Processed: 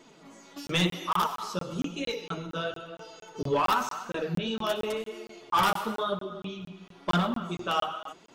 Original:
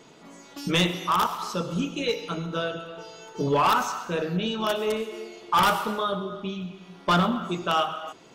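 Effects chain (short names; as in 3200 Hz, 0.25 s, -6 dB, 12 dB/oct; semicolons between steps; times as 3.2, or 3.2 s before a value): flange 0.96 Hz, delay 2.9 ms, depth 8.5 ms, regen +25%; crackling interface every 0.23 s, samples 1024, zero, from 0.67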